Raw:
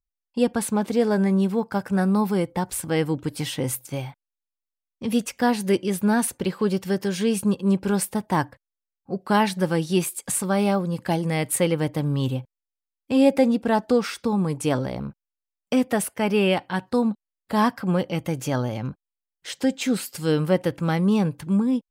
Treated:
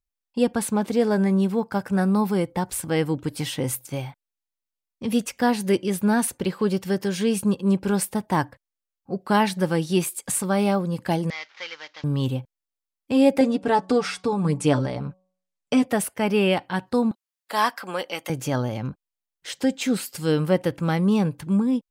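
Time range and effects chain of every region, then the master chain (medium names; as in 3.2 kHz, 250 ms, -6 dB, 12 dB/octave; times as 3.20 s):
11.30–12.04 s: CVSD coder 32 kbps + Butterworth band-pass 2.9 kHz, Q 0.62
13.40–15.86 s: low-pass 10 kHz 24 dB/octave + comb 6.9 ms, depth 61% + de-hum 185.7 Hz, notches 6
17.11–18.30 s: high-pass 400 Hz + tilt shelf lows -5 dB, about 750 Hz
whole clip: none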